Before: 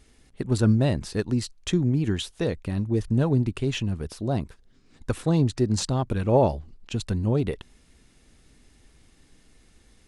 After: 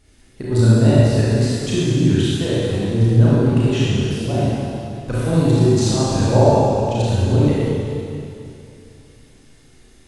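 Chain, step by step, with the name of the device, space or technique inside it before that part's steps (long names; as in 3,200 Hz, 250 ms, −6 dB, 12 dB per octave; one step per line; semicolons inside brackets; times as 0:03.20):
tunnel (flutter between parallel walls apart 5.9 metres, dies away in 0.27 s; convolution reverb RT60 2.7 s, pre-delay 28 ms, DRR −8 dB)
level −1.5 dB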